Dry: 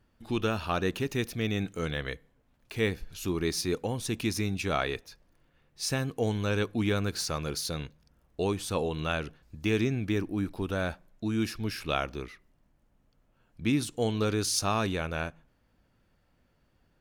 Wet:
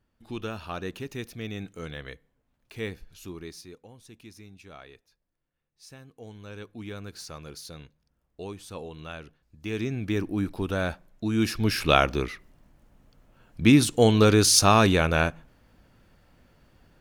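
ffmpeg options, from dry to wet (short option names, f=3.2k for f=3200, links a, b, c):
-af "volume=22.5dB,afade=t=out:st=2.96:d=0.79:silence=0.237137,afade=t=in:st=6.08:d=1.14:silence=0.354813,afade=t=in:st=9.56:d=0.73:silence=0.251189,afade=t=in:st=11.3:d=0.52:silence=0.446684"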